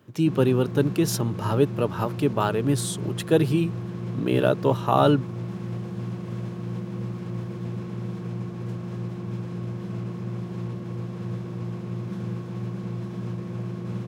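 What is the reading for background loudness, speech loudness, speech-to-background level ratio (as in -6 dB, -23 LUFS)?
-32.5 LUFS, -24.0 LUFS, 8.5 dB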